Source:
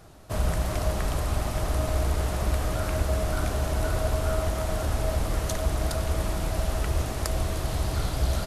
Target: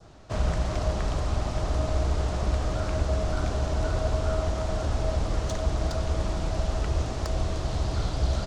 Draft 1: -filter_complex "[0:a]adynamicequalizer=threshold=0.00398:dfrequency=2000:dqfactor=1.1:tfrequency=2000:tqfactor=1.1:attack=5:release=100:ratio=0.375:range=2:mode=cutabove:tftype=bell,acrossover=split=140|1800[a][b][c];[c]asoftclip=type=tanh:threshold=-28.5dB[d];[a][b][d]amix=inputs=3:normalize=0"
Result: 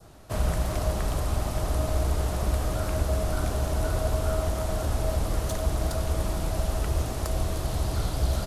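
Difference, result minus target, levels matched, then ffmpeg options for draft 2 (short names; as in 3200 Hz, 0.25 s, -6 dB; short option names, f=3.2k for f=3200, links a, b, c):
8000 Hz band +4.5 dB
-filter_complex "[0:a]adynamicequalizer=threshold=0.00398:dfrequency=2000:dqfactor=1.1:tfrequency=2000:tqfactor=1.1:attack=5:release=100:ratio=0.375:range=2:mode=cutabove:tftype=bell,lowpass=f=6.9k:w=0.5412,lowpass=f=6.9k:w=1.3066,acrossover=split=140|1800[a][b][c];[c]asoftclip=type=tanh:threshold=-28.5dB[d];[a][b][d]amix=inputs=3:normalize=0"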